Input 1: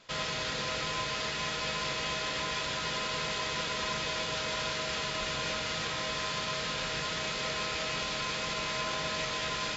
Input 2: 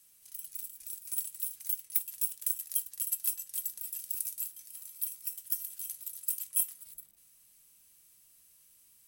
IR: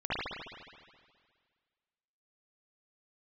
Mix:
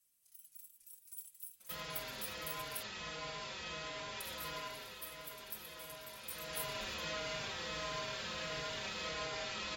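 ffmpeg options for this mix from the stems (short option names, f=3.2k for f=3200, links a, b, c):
-filter_complex "[0:a]adelay=1600,volume=0.5dB,afade=t=out:st=4.55:d=0.39:silence=0.446684,afade=t=in:st=6.2:d=0.56:silence=0.298538,asplit=2[a][b];[b]volume=-14.5dB[c];[1:a]volume=-12dB,asplit=3[d][e][f];[d]atrim=end=2.83,asetpts=PTS-STARTPTS,afade=t=out:st=2.826:d=0.004:c=hsin[g];[e]atrim=start=2.83:end=4.2,asetpts=PTS-STARTPTS,volume=0[h];[f]atrim=start=4.2,asetpts=PTS-STARTPTS,afade=t=in:d=0.004:c=hsin[i];[g][h][i]concat=n=3:v=0:a=1,asplit=2[j][k];[k]volume=-16.5dB[l];[2:a]atrim=start_sample=2205[m];[c][l]amix=inputs=2:normalize=0[n];[n][m]afir=irnorm=-1:irlink=0[o];[a][j][o]amix=inputs=3:normalize=0,asplit=2[p][q];[q]adelay=4.5,afreqshift=-1.5[r];[p][r]amix=inputs=2:normalize=1"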